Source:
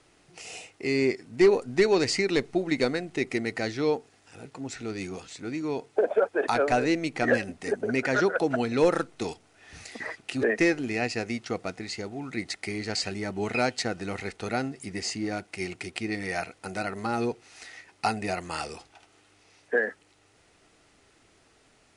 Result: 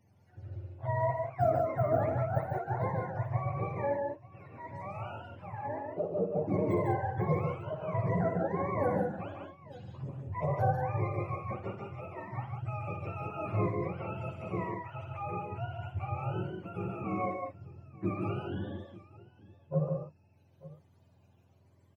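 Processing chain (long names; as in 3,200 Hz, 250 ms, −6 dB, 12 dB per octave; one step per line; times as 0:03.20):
frequency axis turned over on the octave scale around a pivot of 510 Hz
multi-tap delay 57/87/147/190/891 ms −9.5/−14/−4.5/−7/−19 dB
level −6.5 dB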